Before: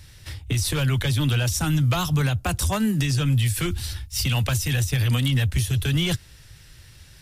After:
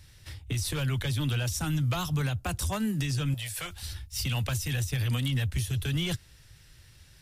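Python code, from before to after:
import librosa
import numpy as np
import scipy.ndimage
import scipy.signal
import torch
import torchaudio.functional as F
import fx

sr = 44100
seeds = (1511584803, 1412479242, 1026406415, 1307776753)

y = fx.low_shelf_res(x, sr, hz=430.0, db=-11.0, q=3.0, at=(3.34, 3.83))
y = y * librosa.db_to_amplitude(-7.0)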